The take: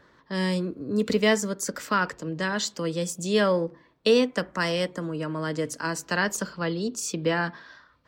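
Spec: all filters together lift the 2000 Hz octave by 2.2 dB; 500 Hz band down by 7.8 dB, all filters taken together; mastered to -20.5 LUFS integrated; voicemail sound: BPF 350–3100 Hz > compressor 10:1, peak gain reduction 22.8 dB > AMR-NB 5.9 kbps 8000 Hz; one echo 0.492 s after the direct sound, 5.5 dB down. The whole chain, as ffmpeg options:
-af "highpass=350,lowpass=3.1k,equalizer=f=500:t=o:g=-8,equalizer=f=2k:t=o:g=4,aecho=1:1:492:0.531,acompressor=threshold=-41dB:ratio=10,volume=26dB" -ar 8000 -c:a libopencore_amrnb -b:a 5900

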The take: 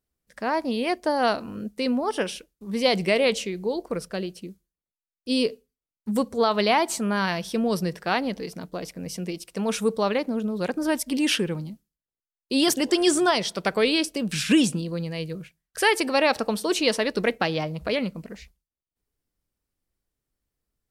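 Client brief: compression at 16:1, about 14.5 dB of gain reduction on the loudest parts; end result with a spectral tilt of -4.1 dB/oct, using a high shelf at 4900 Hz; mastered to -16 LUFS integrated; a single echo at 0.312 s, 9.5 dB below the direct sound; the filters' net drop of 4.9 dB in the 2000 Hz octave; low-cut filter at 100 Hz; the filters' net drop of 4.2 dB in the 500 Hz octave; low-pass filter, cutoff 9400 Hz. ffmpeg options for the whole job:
-af "highpass=100,lowpass=9.4k,equalizer=f=500:t=o:g=-5,equalizer=f=2k:t=o:g=-7,highshelf=f=4.9k:g=4.5,acompressor=threshold=-31dB:ratio=16,aecho=1:1:312:0.335,volume=19.5dB"

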